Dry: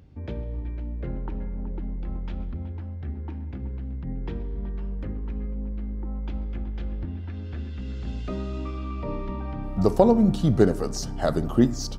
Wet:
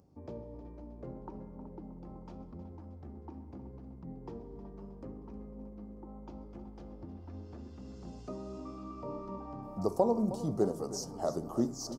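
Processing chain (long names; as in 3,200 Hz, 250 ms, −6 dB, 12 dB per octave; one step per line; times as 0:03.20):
high-pass filter 360 Hz 6 dB per octave
flat-topped bell 2,400 Hz −16 dB
in parallel at −2 dB: downward compressor, threshold −39 dBFS, peak gain reduction 23.5 dB
on the sum: flanger 0.75 Hz, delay 5 ms, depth 6.7 ms, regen +82%
on a send: repeating echo 314 ms, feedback 53%, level −14 dB
on the sum: level −3.5 dB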